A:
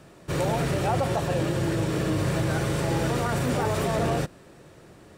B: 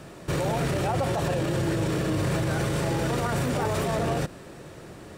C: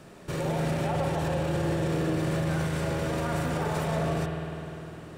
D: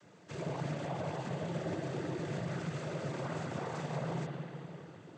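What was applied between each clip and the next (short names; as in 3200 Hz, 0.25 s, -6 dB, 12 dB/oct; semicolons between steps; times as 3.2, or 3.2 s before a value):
limiter -25 dBFS, peak gain reduction 10.5 dB; gain +6.5 dB
notches 50/100 Hz; spring tank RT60 3.3 s, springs 50 ms, chirp 60 ms, DRR 0.5 dB; gain -5.5 dB
noise vocoder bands 16; gain -9 dB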